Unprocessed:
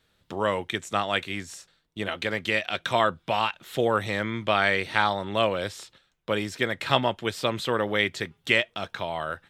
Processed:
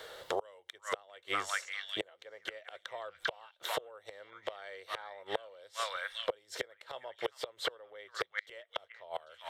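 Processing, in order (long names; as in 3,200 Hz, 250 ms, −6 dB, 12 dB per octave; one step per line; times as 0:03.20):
notch filter 2,500 Hz, Q 7
echo through a band-pass that steps 398 ms, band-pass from 1,700 Hz, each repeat 1.4 octaves, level −5 dB
gate with flip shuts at −19 dBFS, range −34 dB
low shelf with overshoot 340 Hz −13.5 dB, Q 3
multiband upward and downward compressor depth 70%
level +1.5 dB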